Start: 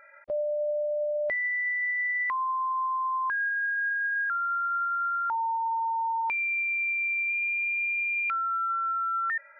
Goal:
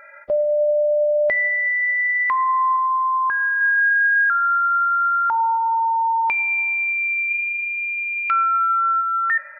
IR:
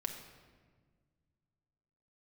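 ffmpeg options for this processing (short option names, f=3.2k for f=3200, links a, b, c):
-filter_complex "[0:a]asettb=1/sr,asplit=3[a][b][c];[a]atrim=end=2.764[d];[b]atrim=start=2.76:end=3.61,asetpts=PTS-STARTPTS,afade=t=in:d=0.004:c=qsin,afade=t=out:st=0.846:d=0.004:c=qsin,highshelf=f=2.3k:g=-10[e];[c]atrim=start=3.606[f];[d][e]acrossfade=d=0.004:c1=hsin:c2=qsin[g];[g][f]acrossfade=d=0.004:c1=qsin:c2=hsin,asplit=3[h][i][j];[h]afade=t=out:st=7.26:d=0.02[k];[i]aecho=1:1:3.1:0.55,afade=t=in:st=7.26:d=0.02,afade=t=out:st=9:d=0.02[l];[j]afade=t=in:st=9:d=0.02[m];[k][l][m]amix=inputs=3:normalize=0,asplit=2[n][o];[1:a]atrim=start_sample=2205[p];[o][p]afir=irnorm=-1:irlink=0,volume=-3.5dB[q];[n][q]amix=inputs=2:normalize=0,volume=5.5dB"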